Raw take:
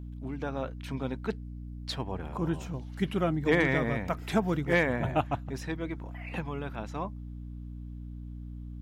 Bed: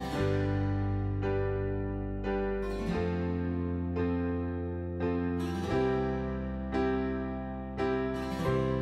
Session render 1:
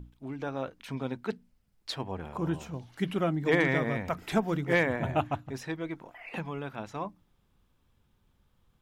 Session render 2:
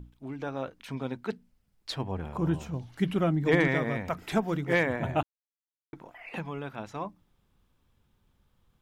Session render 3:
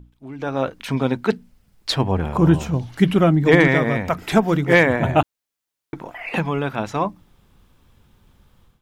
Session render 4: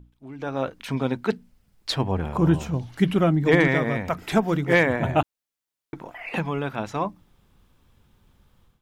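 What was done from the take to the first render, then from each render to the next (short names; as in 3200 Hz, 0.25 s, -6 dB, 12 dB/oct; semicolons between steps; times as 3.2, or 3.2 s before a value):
notches 60/120/180/240/300 Hz
1.91–3.68 low shelf 190 Hz +7.5 dB; 5.23–5.93 mute
AGC gain up to 14 dB
gain -4.5 dB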